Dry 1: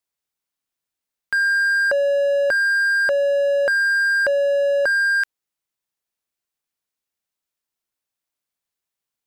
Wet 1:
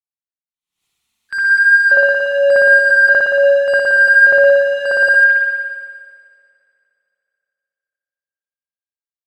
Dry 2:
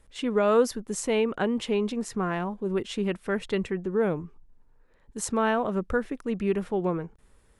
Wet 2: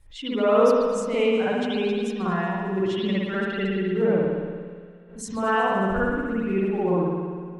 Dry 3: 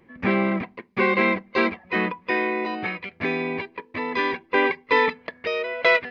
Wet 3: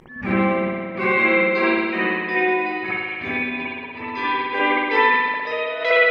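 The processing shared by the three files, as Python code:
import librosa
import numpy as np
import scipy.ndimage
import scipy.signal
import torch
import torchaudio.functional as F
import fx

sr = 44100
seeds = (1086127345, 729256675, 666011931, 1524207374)

p1 = fx.bin_expand(x, sr, power=1.5)
p2 = fx.high_shelf(p1, sr, hz=5100.0, db=9.0)
p3 = fx.hum_notches(p2, sr, base_hz=50, count=8)
p4 = fx.rider(p3, sr, range_db=5, speed_s=2.0)
p5 = p3 + (p4 * 10.0 ** (0.0 / 20.0))
p6 = fx.echo_heads(p5, sr, ms=74, heads='second and third', feedback_pct=65, wet_db=-20.0)
p7 = fx.vibrato(p6, sr, rate_hz=2.0, depth_cents=9.3)
p8 = fx.mod_noise(p7, sr, seeds[0], snr_db=35)
p9 = fx.air_absorb(p8, sr, metres=55.0)
p10 = fx.rev_spring(p9, sr, rt60_s=1.6, pass_ms=(57,), chirp_ms=60, drr_db=-10.0)
p11 = fx.pre_swell(p10, sr, db_per_s=100.0)
y = p11 * 10.0 ** (-10.5 / 20.0)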